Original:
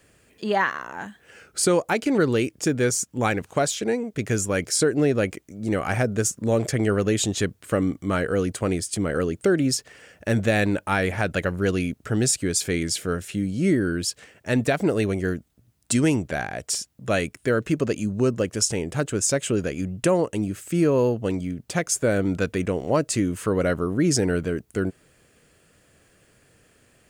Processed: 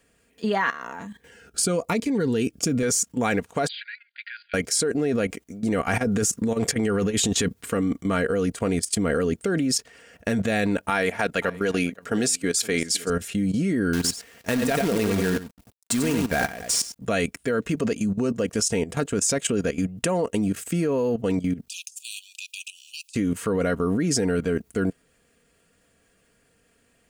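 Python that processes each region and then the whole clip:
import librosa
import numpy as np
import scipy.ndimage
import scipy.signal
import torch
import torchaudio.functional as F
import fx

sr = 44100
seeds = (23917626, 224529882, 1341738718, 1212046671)

y = fx.chain(x, sr, fx.low_shelf(hz=200.0, db=6.5),
    fx.notch_cascade(direction='falling', hz=1.1), at=(0.99, 2.83))
y = fx.chain(y, sr, fx.brickwall_bandpass(low_hz=1400.0, high_hz=4900.0),
    fx.air_absorb(metres=82.0), at=(3.68, 4.54))
y = fx.chain(y, sr, fx.notch(hz=610.0, q=6.3),
    fx.over_compress(threshold_db=-26.0, ratio=-1.0), at=(5.93, 7.93))
y = fx.chain(y, sr, fx.highpass(hz=310.0, slope=6),
    fx.echo_single(ms=518, db=-19.0), at=(10.9, 13.1))
y = fx.chain(y, sr, fx.echo_single(ms=92, db=-7.5),
    fx.quant_companded(bits=4), at=(13.93, 16.96))
y = fx.chain(y, sr, fx.brickwall_highpass(low_hz=2400.0),
    fx.over_compress(threshold_db=-35.0, ratio=-0.5), at=(21.68, 23.15))
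y = y + 0.46 * np.pad(y, (int(4.3 * sr / 1000.0), 0))[:len(y)]
y = fx.level_steps(y, sr, step_db=14)
y = F.gain(torch.from_numpy(y), 5.5).numpy()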